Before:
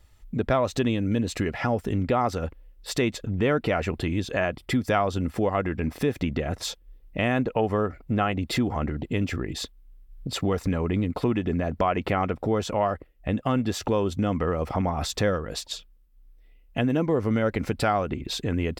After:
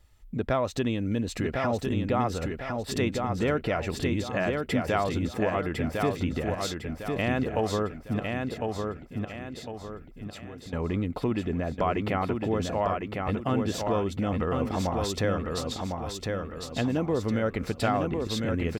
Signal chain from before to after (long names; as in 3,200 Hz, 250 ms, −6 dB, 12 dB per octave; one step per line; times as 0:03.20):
0:08.19–0:10.73: downward compressor 3 to 1, threshold −44 dBFS, peak gain reduction 17.5 dB
repeating echo 1,054 ms, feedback 40%, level −4 dB
level −3.5 dB